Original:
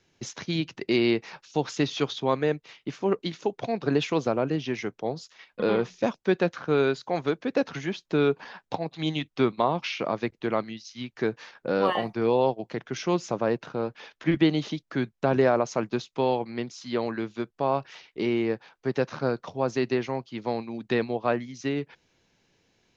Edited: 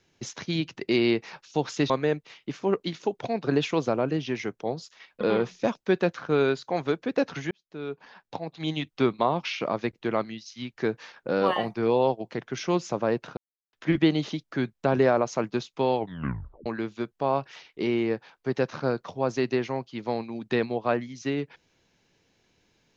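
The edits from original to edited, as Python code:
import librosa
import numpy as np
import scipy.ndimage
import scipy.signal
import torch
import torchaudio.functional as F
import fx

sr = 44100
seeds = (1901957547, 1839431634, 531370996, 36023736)

y = fx.edit(x, sr, fx.cut(start_s=1.9, length_s=0.39),
    fx.fade_in_span(start_s=7.9, length_s=1.41),
    fx.silence(start_s=13.76, length_s=0.36),
    fx.tape_stop(start_s=16.37, length_s=0.68), tone=tone)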